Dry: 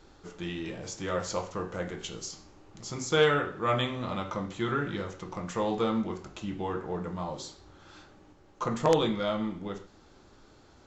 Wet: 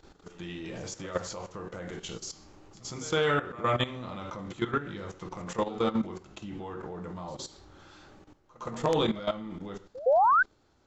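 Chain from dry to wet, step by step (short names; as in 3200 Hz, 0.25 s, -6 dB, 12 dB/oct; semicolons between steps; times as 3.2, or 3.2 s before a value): level quantiser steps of 14 dB; painted sound rise, 10.06–10.43, 480–1600 Hz -24 dBFS; pre-echo 0.114 s -19 dB; gain +3 dB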